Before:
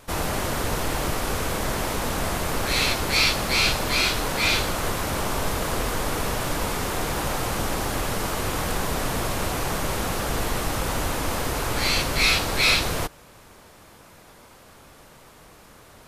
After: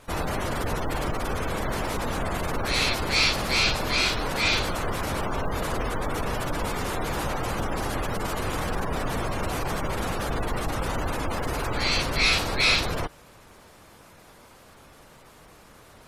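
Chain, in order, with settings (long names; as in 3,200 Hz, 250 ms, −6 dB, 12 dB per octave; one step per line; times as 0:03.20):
gate on every frequency bin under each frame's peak −25 dB strong
log-companded quantiser 8 bits
level −1.5 dB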